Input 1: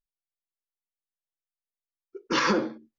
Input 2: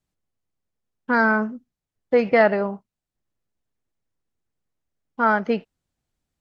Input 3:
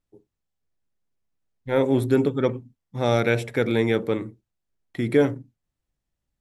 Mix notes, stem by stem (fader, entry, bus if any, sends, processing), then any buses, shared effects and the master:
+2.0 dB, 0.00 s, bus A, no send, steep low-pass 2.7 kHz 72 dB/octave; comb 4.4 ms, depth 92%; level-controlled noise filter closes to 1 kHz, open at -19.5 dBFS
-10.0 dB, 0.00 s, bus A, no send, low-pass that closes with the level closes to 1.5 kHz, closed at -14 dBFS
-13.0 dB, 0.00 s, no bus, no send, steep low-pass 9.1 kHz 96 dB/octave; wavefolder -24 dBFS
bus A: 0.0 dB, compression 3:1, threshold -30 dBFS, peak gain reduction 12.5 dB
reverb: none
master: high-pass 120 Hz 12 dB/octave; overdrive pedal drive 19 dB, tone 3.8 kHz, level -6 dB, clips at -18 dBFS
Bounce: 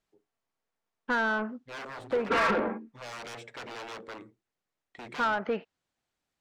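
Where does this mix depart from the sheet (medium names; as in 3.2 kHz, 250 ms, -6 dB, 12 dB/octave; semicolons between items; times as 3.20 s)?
stem 3 -13.0 dB -> -21.5 dB; master: missing high-pass 120 Hz 12 dB/octave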